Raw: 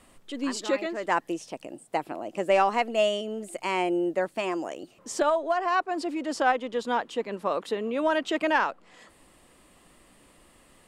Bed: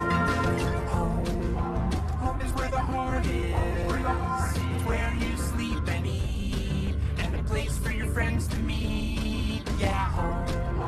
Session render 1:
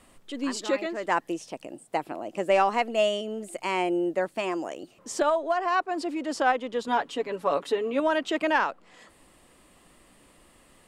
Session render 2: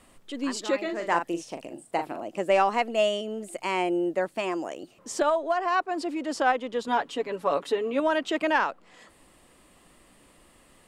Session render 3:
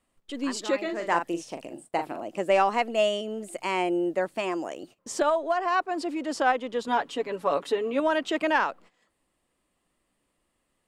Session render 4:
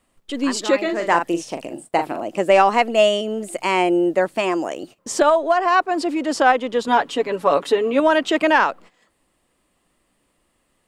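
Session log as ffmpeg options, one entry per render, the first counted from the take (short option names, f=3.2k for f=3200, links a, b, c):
-filter_complex "[0:a]asettb=1/sr,asplit=3[a][b][c];[a]atrim=end=6.874[d];[b]atrim=start=6.87:end=8,asetpts=PTS-STARTPTS,afade=t=in:d=0.004:c=qsin,afade=t=out:st=1.126:d=0.004:c=qsin,aecho=1:1:7.1:0.7,atrim=end_sample=49833[e];[c]atrim=start=7.996[f];[d][e]acrossfade=d=0.004:c1=hsin:c2=qsin[g];[g][f]acrossfade=d=0.004:c1=qsin:c2=hsin"
-filter_complex "[0:a]asettb=1/sr,asplit=3[a][b][c];[a]atrim=end=0.834[d];[b]atrim=start=0.83:end=2.24,asetpts=PTS-STARTPTS,afade=t=in:d=0.004:c=qsin,afade=t=out:st=1.406:d=0.004:c=qsin,asplit=2[e][f];[f]adelay=41,volume=-7dB[g];[e][g]amix=inputs=2:normalize=0,atrim=end_sample=62181[h];[c]atrim=start=2.236[i];[d][h]acrossfade=d=0.004:c1=hsin:c2=qsin[j];[j][i]acrossfade=d=0.004:c1=qsin:c2=hsin"
-af "agate=range=-18dB:threshold=-48dB:ratio=16:detection=peak"
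-af "volume=8.5dB,alimiter=limit=-3dB:level=0:latency=1"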